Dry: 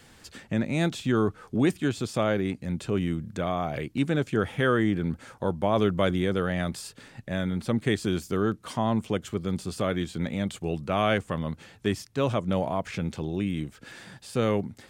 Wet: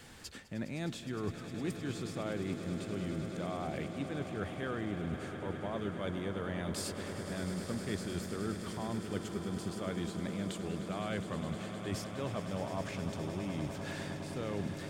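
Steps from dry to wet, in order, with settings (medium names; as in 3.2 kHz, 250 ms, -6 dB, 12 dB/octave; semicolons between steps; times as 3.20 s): reverse; compression 6:1, threshold -36 dBFS, peak gain reduction 16.5 dB; reverse; echo with a slow build-up 103 ms, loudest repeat 8, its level -13.5 dB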